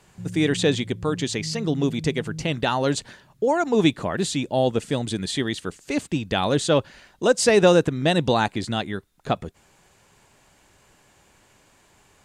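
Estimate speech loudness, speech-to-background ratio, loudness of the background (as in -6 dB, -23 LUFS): -23.0 LUFS, 13.5 dB, -36.5 LUFS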